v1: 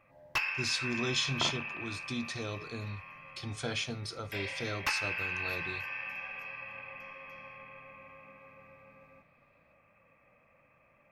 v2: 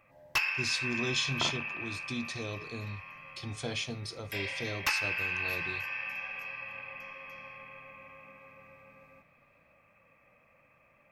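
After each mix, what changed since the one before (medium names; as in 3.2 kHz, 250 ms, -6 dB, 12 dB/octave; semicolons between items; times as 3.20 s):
speech: add peaking EQ 1.4 kHz -10 dB 0.39 oct; first sound: add treble shelf 3.5 kHz +7.5 dB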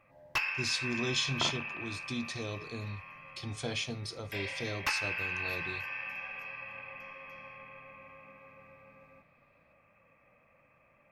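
first sound: add treble shelf 3.5 kHz -7.5 dB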